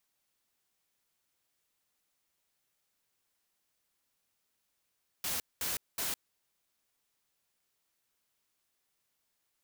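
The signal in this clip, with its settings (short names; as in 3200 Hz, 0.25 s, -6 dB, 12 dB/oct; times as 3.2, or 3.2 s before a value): noise bursts white, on 0.16 s, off 0.21 s, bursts 3, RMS -34.5 dBFS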